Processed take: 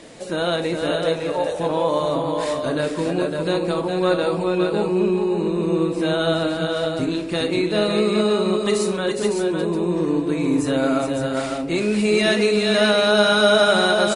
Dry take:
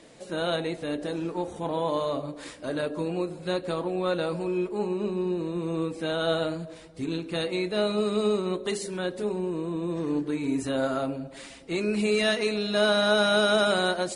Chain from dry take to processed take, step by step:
0:00.91–0:01.60: low shelf with overshoot 400 Hz −8 dB, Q 3
in parallel at +1.5 dB: downward compressor, threshold −33 dBFS, peak gain reduction 14 dB
on the sum: multi-tap delay 52/413/556 ms −13/−5.5/−5.5 dB
level +2.5 dB

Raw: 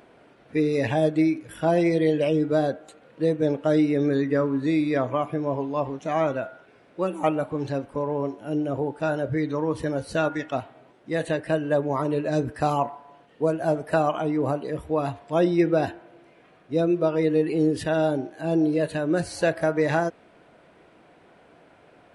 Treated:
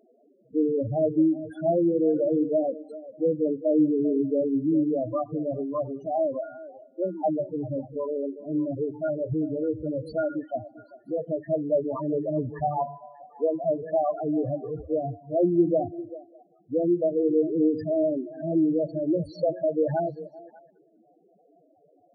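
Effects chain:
spectral peaks only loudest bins 4
echo through a band-pass that steps 197 ms, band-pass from 170 Hz, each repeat 1.4 octaves, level −11 dB

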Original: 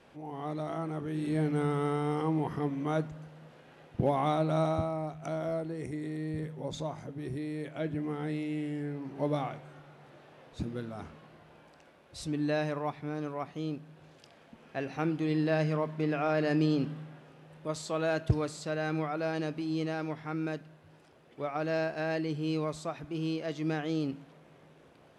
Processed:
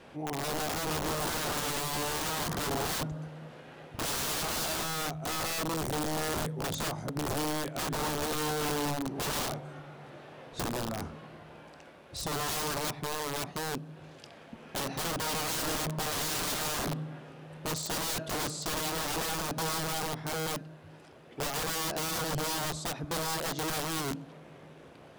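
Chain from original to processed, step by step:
wrap-around overflow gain 33 dB
dynamic equaliser 2,200 Hz, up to −6 dB, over −56 dBFS, Q 1.2
level +6.5 dB

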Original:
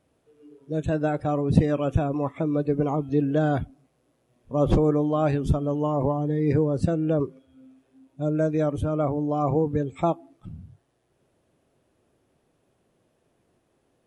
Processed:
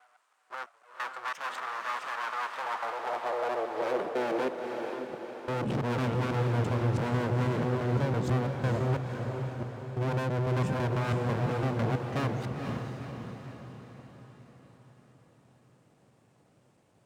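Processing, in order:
slices reordered back to front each 137 ms, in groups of 3
low-shelf EQ 320 Hz +4 dB
in parallel at +0.5 dB: downward compressor, threshold −28 dBFS, peak gain reduction 18 dB
on the sum: full-wave rectification
change of speed 0.825×
soft clipping −17.5 dBFS, distortion −10 dB
high-pass filter sweep 1,200 Hz → 120 Hz, 0:02.28–0:06.07
on a send: feedback delay with all-pass diffusion 494 ms, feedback 52%, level −5 dB
on the sum: level −4 dB

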